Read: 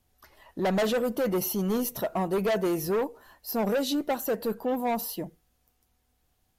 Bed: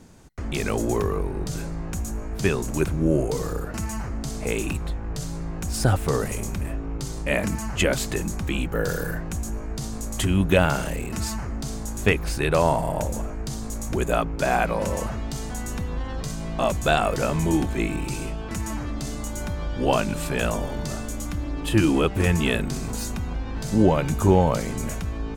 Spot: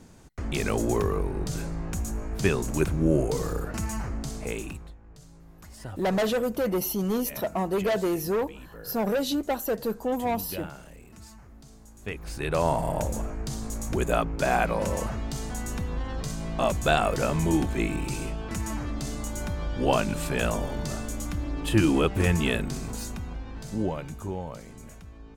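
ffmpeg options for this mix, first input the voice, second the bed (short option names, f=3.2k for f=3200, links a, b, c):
-filter_complex "[0:a]adelay=5400,volume=0.5dB[a];[1:a]volume=16dB,afade=t=out:st=4.07:d=0.89:silence=0.125893,afade=t=in:st=12.01:d=0.88:silence=0.133352,afade=t=out:st=22.22:d=2.09:silence=0.188365[b];[a][b]amix=inputs=2:normalize=0"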